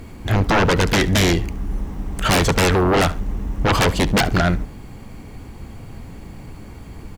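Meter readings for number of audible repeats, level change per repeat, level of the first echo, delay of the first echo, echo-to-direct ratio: 2, -11.5 dB, -19.5 dB, 70 ms, -19.0 dB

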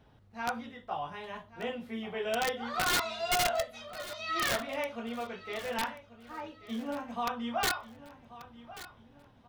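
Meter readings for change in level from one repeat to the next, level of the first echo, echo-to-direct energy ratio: -9.0 dB, -16.0 dB, -15.5 dB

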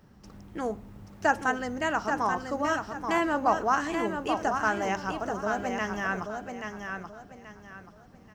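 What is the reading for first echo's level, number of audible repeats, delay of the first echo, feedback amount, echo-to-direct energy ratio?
-6.0 dB, 3, 831 ms, 30%, -5.5 dB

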